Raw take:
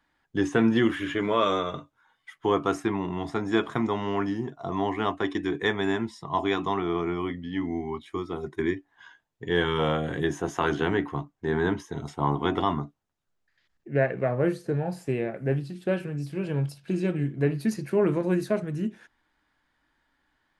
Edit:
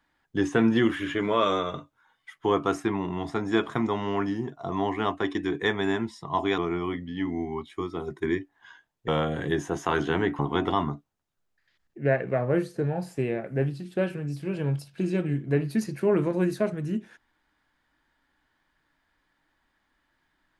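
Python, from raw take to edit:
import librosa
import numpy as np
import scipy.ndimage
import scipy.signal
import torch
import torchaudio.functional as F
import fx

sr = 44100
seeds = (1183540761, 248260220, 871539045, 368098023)

y = fx.edit(x, sr, fx.cut(start_s=6.58, length_s=0.36),
    fx.cut(start_s=9.44, length_s=0.36),
    fx.cut(start_s=11.11, length_s=1.18), tone=tone)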